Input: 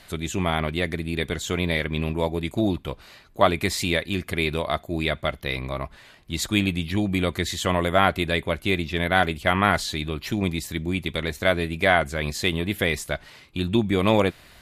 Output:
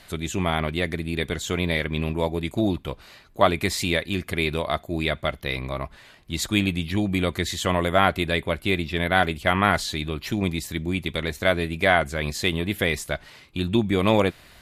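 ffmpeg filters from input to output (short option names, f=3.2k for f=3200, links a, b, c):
-filter_complex "[0:a]asettb=1/sr,asplit=3[a][b][c];[a]atrim=end=8.244[d];[b]atrim=start=8.24:end=9.24,asetpts=PTS-STARTPTS,afade=t=in:d=0.004:c=qsin,afade=t=out:st=0.996:d=0.004:c=qsin,bandreject=f=6.3k:w=7.1[e];[c]atrim=start=9.236[f];[d][e]acrossfade=d=0.004:c1=hsin:c2=qsin[g];[g][f]acrossfade=d=0.004:c1=qsin:c2=hsin"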